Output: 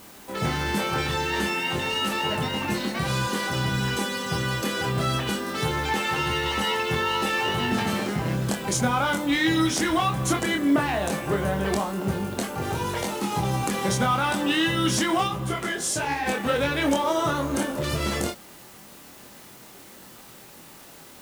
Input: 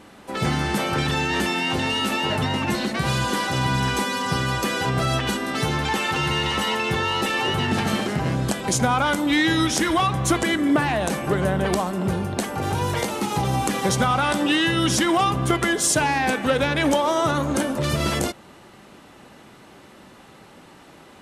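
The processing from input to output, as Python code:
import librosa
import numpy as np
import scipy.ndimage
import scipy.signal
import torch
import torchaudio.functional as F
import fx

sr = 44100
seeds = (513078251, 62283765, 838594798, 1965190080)

p1 = fx.quant_dither(x, sr, seeds[0], bits=6, dither='triangular')
p2 = x + (p1 * librosa.db_to_amplitude(-7.0))
p3 = fx.doubler(p2, sr, ms=25.0, db=-4)
p4 = fx.detune_double(p3, sr, cents=fx.line((15.27, 47.0), (16.25, 59.0)), at=(15.27, 16.25), fade=0.02)
y = p4 * librosa.db_to_amplitude(-7.5)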